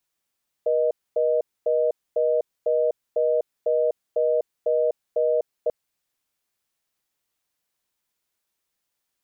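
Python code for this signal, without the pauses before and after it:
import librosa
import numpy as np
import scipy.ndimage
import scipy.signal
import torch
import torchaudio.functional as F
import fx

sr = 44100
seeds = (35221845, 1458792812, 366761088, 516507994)

y = fx.call_progress(sr, length_s=5.04, kind='reorder tone', level_db=-21.0)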